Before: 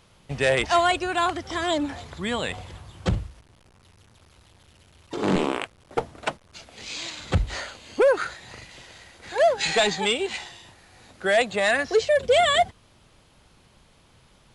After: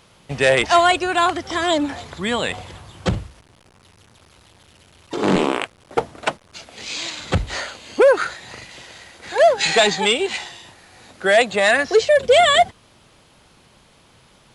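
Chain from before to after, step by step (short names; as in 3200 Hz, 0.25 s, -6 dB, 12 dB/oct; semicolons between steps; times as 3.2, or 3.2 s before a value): low shelf 85 Hz -10 dB; gain +6 dB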